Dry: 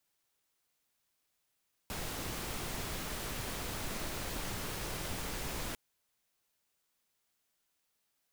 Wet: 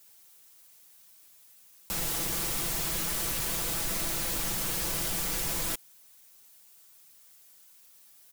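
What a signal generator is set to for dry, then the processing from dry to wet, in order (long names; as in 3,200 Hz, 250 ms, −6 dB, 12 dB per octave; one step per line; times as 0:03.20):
noise pink, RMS −39 dBFS 3.85 s
in parallel at −1.5 dB: compressor whose output falls as the input rises −50 dBFS, ratio −1
on the sum: high-shelf EQ 5,600 Hz +12 dB
comb filter 6 ms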